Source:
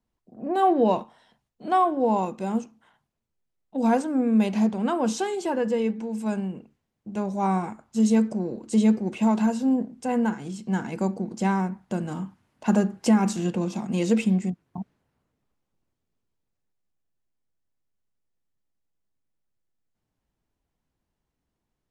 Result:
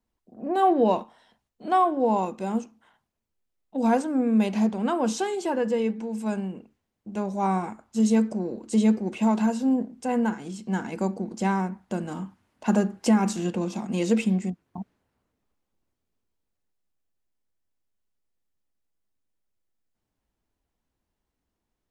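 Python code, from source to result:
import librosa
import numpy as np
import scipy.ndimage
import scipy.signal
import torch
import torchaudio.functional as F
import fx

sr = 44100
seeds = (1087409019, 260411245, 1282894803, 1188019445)

y = fx.peak_eq(x, sr, hz=140.0, db=-7.5, octaves=0.48)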